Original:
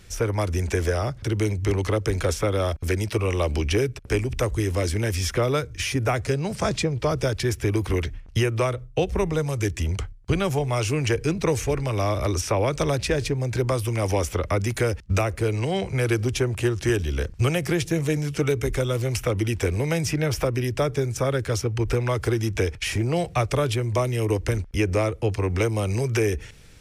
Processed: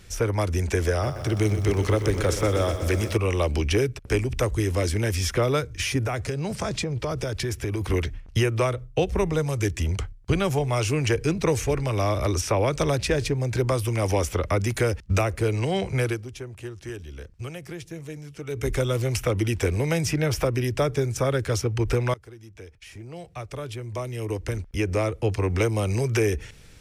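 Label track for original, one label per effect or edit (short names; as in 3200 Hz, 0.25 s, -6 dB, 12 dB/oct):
0.910000	3.170000	lo-fi delay 0.124 s, feedback 80%, word length 8-bit, level -11 dB
5.990000	7.810000	compressor, threshold -23 dBFS
16.000000	18.690000	dip -13.5 dB, fades 0.22 s
22.140000	25.340000	fade in quadratic, from -22 dB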